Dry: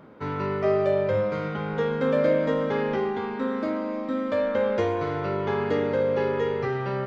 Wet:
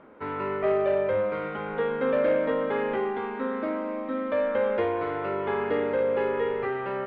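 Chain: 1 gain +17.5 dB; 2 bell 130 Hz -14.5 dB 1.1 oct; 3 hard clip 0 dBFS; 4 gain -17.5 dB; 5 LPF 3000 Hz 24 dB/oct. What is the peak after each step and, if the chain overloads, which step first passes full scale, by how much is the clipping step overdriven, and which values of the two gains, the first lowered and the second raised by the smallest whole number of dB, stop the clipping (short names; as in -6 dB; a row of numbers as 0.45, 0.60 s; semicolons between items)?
+6.5, +5.0, 0.0, -17.5, -17.0 dBFS; step 1, 5.0 dB; step 1 +12.5 dB, step 4 -12.5 dB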